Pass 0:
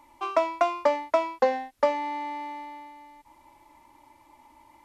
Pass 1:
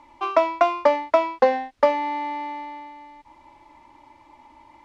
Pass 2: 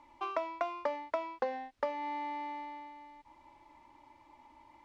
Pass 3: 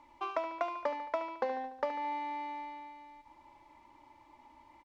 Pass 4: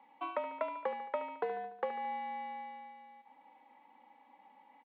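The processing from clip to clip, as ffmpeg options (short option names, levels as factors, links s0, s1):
-af "lowpass=4900,volume=1.78"
-af "acompressor=threshold=0.0501:ratio=2.5,volume=0.376"
-af "aecho=1:1:73|146|219|292|365|438:0.237|0.133|0.0744|0.0416|0.0233|0.0131"
-af "highpass=f=320:t=q:w=0.5412,highpass=f=320:t=q:w=1.307,lowpass=f=3500:t=q:w=0.5176,lowpass=f=3500:t=q:w=0.7071,lowpass=f=3500:t=q:w=1.932,afreqshift=-56,volume=0.794"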